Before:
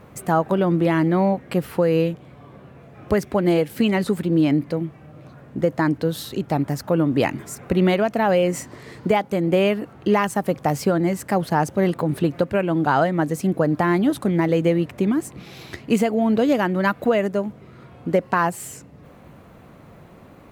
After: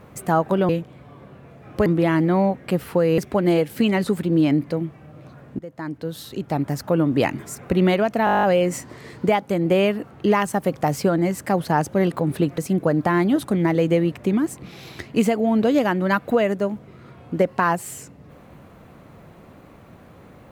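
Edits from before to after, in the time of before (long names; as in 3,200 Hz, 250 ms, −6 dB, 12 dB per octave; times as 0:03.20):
0:02.01–0:03.18: move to 0:00.69
0:05.59–0:06.79: fade in linear, from −20.5 dB
0:08.25: stutter 0.02 s, 10 plays
0:12.40–0:13.32: remove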